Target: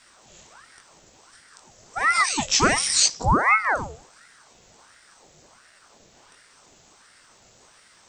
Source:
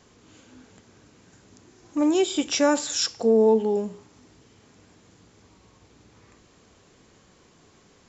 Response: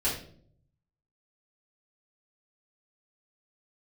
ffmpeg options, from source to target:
-af "crystalizer=i=2.5:c=0,flanger=delay=15:depth=7.8:speed=0.88,aeval=exprs='val(0)*sin(2*PI*1000*n/s+1000*0.75/1.4*sin(2*PI*1.4*n/s))':channel_layout=same,volume=5dB"

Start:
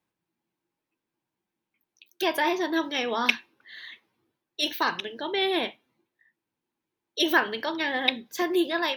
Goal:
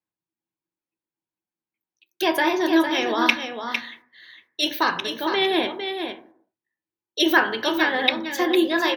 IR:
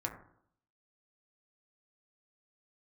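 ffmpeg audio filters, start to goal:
-filter_complex "[0:a]agate=range=-16dB:threshold=-52dB:ratio=16:detection=peak,aecho=1:1:455:0.422,asplit=2[link_01][link_02];[1:a]atrim=start_sample=2205,afade=type=out:start_time=0.44:duration=0.01,atrim=end_sample=19845[link_03];[link_02][link_03]afir=irnorm=-1:irlink=0,volume=-1.5dB[link_04];[link_01][link_04]amix=inputs=2:normalize=0,volume=-1dB"

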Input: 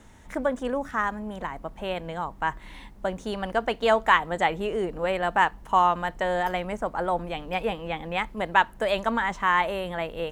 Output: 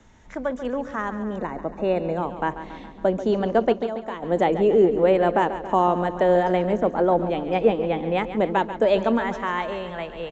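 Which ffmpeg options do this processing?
ffmpeg -i in.wav -filter_complex "[0:a]acrossover=split=210|520|3400[link_01][link_02][link_03][link_04];[link_02]dynaudnorm=framelen=110:gausssize=21:maxgain=16.5dB[link_05];[link_03]alimiter=limit=-16.5dB:level=0:latency=1:release=391[link_06];[link_01][link_05][link_06][link_04]amix=inputs=4:normalize=0,asettb=1/sr,asplit=3[link_07][link_08][link_09];[link_07]atrim=end=3.724[link_10];[link_08]atrim=start=3.72:end=4.23,asetpts=PTS-STARTPTS,afade=type=in:duration=0.004:curve=qsin,afade=type=out:start_time=0.506:duration=0.004:curve=qsin,acompressor=threshold=-28dB:ratio=4[link_11];[link_09]atrim=start=4.226[link_12];[link_10][link_11]acrossfade=duration=0.004:curve1=hsin:curve2=qsin[link_13];[link_13][link_12]acrossfade=duration=0.004:curve1=qsin:curve2=hsin,aecho=1:1:139|278|417|556|695|834|973:0.251|0.148|0.0874|0.0516|0.0304|0.018|0.0106,aresample=16000,aresample=44100,asettb=1/sr,asplit=3[link_14][link_15][link_16];[link_14]atrim=end=1.364[link_17];[link_15]atrim=start=1.36:end=2.18,asetpts=PTS-STARTPTS,afade=type=in:duration=0.004:curve=qsin,afade=type=out:start_time=0.816:duration=0.004:curve=qsin,asuperstop=centerf=3200:order=12:qfactor=6.2[link_18];[link_16]atrim=start=2.176[link_19];[link_17][link_18]acrossfade=duration=0.004:curve1=hsin:curve2=qsin[link_20];[link_20][link_19]acrossfade=duration=0.004:curve1=qsin:curve2=hsin,volume=-2dB" out.wav

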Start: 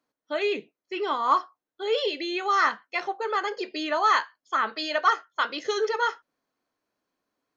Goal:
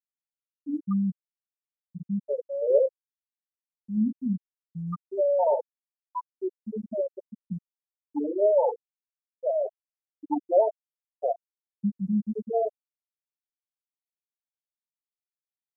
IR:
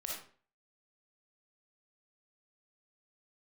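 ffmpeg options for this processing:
-af "asetrate=21168,aresample=44100,afftfilt=real='re*gte(hypot(re,im),0.398)':imag='im*gte(hypot(re,im),0.398)':win_size=1024:overlap=0.75,aexciter=amount=9.9:drive=9.5:freq=5000"

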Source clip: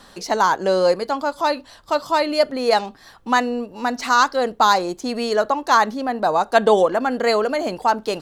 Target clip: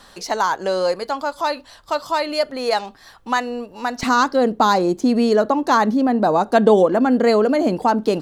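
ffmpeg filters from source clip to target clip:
ffmpeg -i in.wav -af "asetnsamples=nb_out_samples=441:pad=0,asendcmd='4.03 equalizer g 12.5',equalizer=frequency=230:width_type=o:width=2.2:gain=-4.5,acompressor=threshold=-20dB:ratio=1.5,volume=1dB" out.wav

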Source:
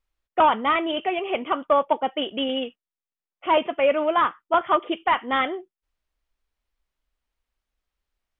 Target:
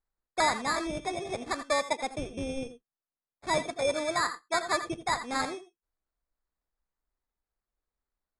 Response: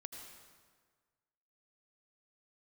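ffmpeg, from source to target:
-filter_complex "[0:a]acrusher=samples=15:mix=1:aa=0.000001[link_01];[1:a]atrim=start_sample=2205,atrim=end_sample=3969[link_02];[link_01][link_02]afir=irnorm=-1:irlink=0,aresample=22050,aresample=44100,volume=-2.5dB"

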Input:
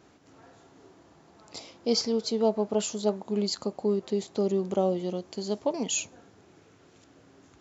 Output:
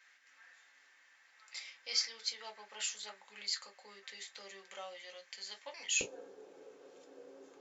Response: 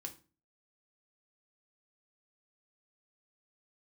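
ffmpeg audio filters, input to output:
-filter_complex "[0:a]asetnsamples=nb_out_samples=441:pad=0,asendcmd='6.01 highpass f 430',highpass=frequency=1900:width_type=q:width=4.6[link_01];[1:a]atrim=start_sample=2205,atrim=end_sample=3528,asetrate=70560,aresample=44100[link_02];[link_01][link_02]afir=irnorm=-1:irlink=0,volume=3dB"

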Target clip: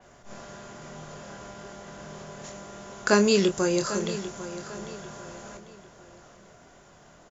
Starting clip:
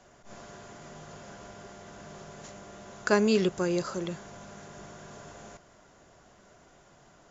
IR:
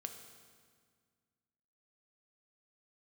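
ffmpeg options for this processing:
-filter_complex "[0:a]asplit=2[link_01][link_02];[link_02]adelay=25,volume=-7.5dB[link_03];[link_01][link_03]amix=inputs=2:normalize=0,aecho=1:1:797|1594|2391:0.211|0.0761|0.0274,adynamicequalizer=threshold=0.00282:dfrequency=4400:dqfactor=0.7:tfrequency=4400:tqfactor=0.7:attack=5:release=100:ratio=0.375:range=4:mode=boostabove:tftype=highshelf,volume=3dB"

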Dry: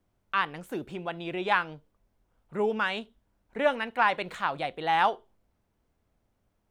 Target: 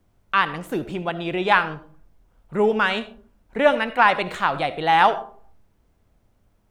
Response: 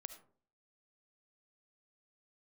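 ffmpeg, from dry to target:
-filter_complex "[0:a]asplit=2[link_01][link_02];[1:a]atrim=start_sample=2205,lowshelf=frequency=150:gain=7.5[link_03];[link_02][link_03]afir=irnorm=-1:irlink=0,volume=8.5dB[link_04];[link_01][link_04]amix=inputs=2:normalize=0"

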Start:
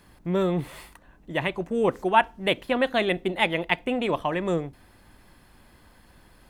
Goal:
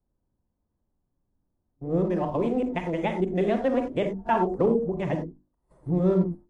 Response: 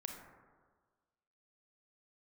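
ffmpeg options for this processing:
-filter_complex "[0:a]areverse,agate=range=-25dB:threshold=-41dB:ratio=16:detection=peak,highshelf=frequency=3900:gain=-3.5,acrossover=split=4400[link_01][link_02];[link_02]acompressor=threshold=-58dB:ratio=4:attack=1:release=60[link_03];[link_01][link_03]amix=inputs=2:normalize=0,tiltshelf=frequency=850:gain=8.5,bandreject=frequency=50:width_type=h:width=6,bandreject=frequency=100:width_type=h:width=6,bandreject=frequency=150:width_type=h:width=6,bandreject=frequency=200:width_type=h:width=6,bandreject=frequency=250:width_type=h:width=6,bandreject=frequency=300:width_type=h:width=6,bandreject=frequency=350:width_type=h:width=6[link_04];[1:a]atrim=start_sample=2205,afade=type=out:start_time=0.16:duration=0.01,atrim=end_sample=7497[link_05];[link_04][link_05]afir=irnorm=-1:irlink=0,acrossover=split=230|1400|5400[link_06][link_07][link_08][link_09];[link_08]aeval=exprs='sgn(val(0))*max(abs(val(0))-0.00188,0)':channel_layout=same[link_10];[link_06][link_07][link_10][link_09]amix=inputs=4:normalize=0" -ar 32000 -c:a libmp3lame -b:a 48k

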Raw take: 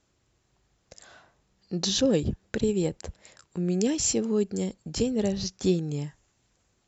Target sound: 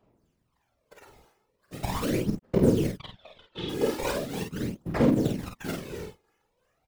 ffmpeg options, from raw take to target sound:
ffmpeg -i in.wav -filter_complex "[0:a]highpass=140,acrossover=split=620[link_01][link_02];[link_02]acrusher=samples=20:mix=1:aa=0.000001:lfo=1:lforange=20:lforate=2.8[link_03];[link_01][link_03]amix=inputs=2:normalize=0,asplit=3[link_04][link_05][link_06];[link_04]afade=type=out:start_time=4.91:duration=0.02[link_07];[link_05]tremolo=f=23:d=0.462,afade=type=in:start_time=4.91:duration=0.02,afade=type=out:start_time=5.79:duration=0.02[link_08];[link_06]afade=type=in:start_time=5.79:duration=0.02[link_09];[link_07][link_08][link_09]amix=inputs=3:normalize=0,acrusher=bits=3:mode=log:mix=0:aa=0.000001,asplit=3[link_10][link_11][link_12];[link_10]afade=type=out:start_time=1.85:duration=0.02[link_13];[link_11]aeval=exprs='sgn(val(0))*max(abs(val(0))-0.00891,0)':channel_layout=same,afade=type=in:start_time=1.85:duration=0.02,afade=type=out:start_time=2.42:duration=0.02[link_14];[link_12]afade=type=in:start_time=2.42:duration=0.02[link_15];[link_13][link_14][link_15]amix=inputs=3:normalize=0,asettb=1/sr,asplit=3[link_16][link_17][link_18];[link_16]atrim=end=3.004[link_19];[link_17]atrim=start=3:end=3.69,asetpts=PTS-STARTPTS,afade=type=in:duration=0.004:curve=qsin,afade=type=out:start_time=0.686:duration=0.004:curve=qsin,lowpass=frequency=3400:width_type=q:width=7.4[link_20];[link_18]atrim=start=3.686[link_21];[link_19][link_20]acrossfade=duration=0.004:curve1=hsin:curve2=qsin[link_22];[link_22][link_21]acrossfade=duration=0.004:curve1=qsin:curve2=hsin,aphaser=in_gain=1:out_gain=1:delay=2.4:decay=0.77:speed=0.4:type=sinusoidal,afftfilt=real='hypot(re,im)*cos(2*PI*random(0))':imag='hypot(re,im)*sin(2*PI*random(1))':win_size=512:overlap=0.75,aecho=1:1:33|49:0.282|0.562" out.wav

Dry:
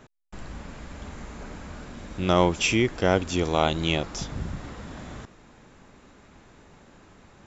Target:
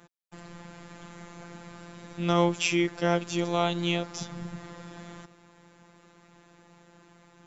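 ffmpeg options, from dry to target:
ffmpeg -i in.wav -af "highpass=76,afftfilt=real='hypot(re,im)*cos(PI*b)':imag='0':win_size=1024:overlap=0.75" out.wav

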